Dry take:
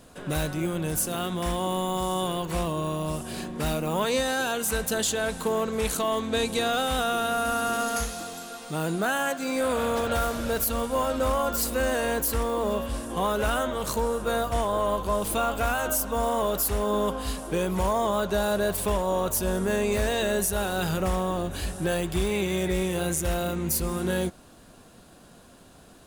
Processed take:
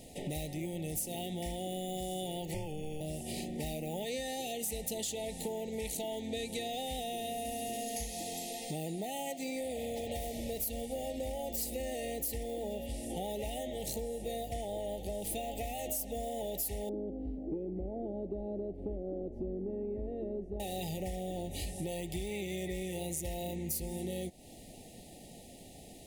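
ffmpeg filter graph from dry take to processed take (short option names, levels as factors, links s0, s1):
-filter_complex "[0:a]asettb=1/sr,asplit=3[s0][s1][s2];[s0]atrim=end=2.544[s3];[s1]atrim=start=2.54:end=3.01,asetpts=PTS-STARTPTS,afade=t=in:d=0.004:c=qsin,afade=t=out:st=0.466:d=0.004:c=qsin,highshelf=f=6100:g=-7,afreqshift=-160,asuperstop=centerf=3900:order=12:qfactor=5.8[s4];[s2]atrim=start=3.006[s5];[s3][s4]acrossfade=d=0.004:c1=hsin:c2=qsin[s6];[s6][s5]acrossfade=d=0.004:c1=qsin:c2=hsin,asettb=1/sr,asplit=3[s7][s8][s9];[s7]atrim=end=16.894[s10];[s8]atrim=start=16.89:end=20.6,asetpts=PTS-STARTPTS,afade=t=in:d=0.004:c=qsin,afade=t=out:st=3.706:d=0.004:c=qsin,lowpass=f=310:t=q:w=3.8,acontrast=76,equalizer=f=140:w=0.35:g=-12.5[s11];[s9]atrim=start=20.596[s12];[s10][s11]acrossfade=d=0.004:c1=hsin:c2=qsin[s13];[s13][s12]acrossfade=d=0.004:c1=qsin:c2=hsin,afftfilt=real='re*(1-between(b*sr/4096,890,1800))':imag='im*(1-between(b*sr/4096,890,1800))':win_size=4096:overlap=0.75,acompressor=threshold=0.0158:ratio=6,highshelf=f=8800:g=4"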